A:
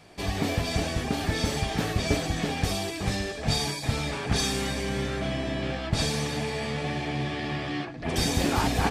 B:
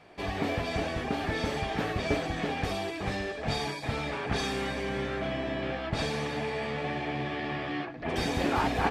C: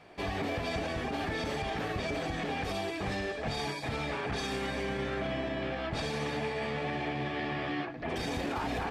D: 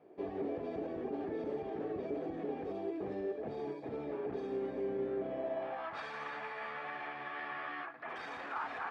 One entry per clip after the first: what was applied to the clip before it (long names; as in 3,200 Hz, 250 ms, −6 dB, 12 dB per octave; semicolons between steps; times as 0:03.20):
bass and treble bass −7 dB, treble −14 dB
brickwall limiter −25 dBFS, peak gain reduction 11 dB
band-pass filter sweep 380 Hz → 1,300 Hz, 0:05.20–0:05.99; level +2 dB